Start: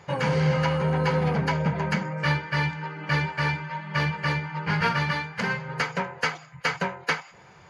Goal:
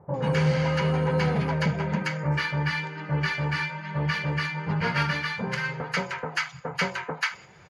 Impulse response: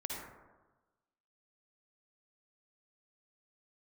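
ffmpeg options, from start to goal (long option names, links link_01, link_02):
-filter_complex "[0:a]acrossover=split=990[link_01][link_02];[link_02]adelay=140[link_03];[link_01][link_03]amix=inputs=2:normalize=0"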